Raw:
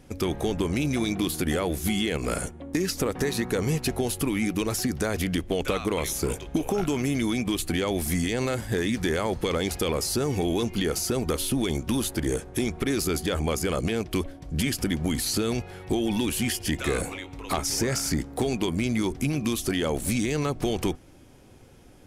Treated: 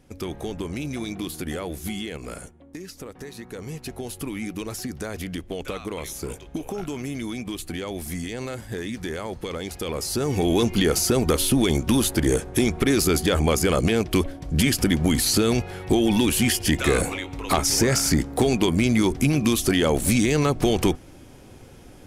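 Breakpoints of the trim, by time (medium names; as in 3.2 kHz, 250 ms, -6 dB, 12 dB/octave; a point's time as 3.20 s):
1.89 s -4.5 dB
2.80 s -12 dB
3.34 s -12 dB
4.25 s -5 dB
9.72 s -5 dB
10.59 s +6 dB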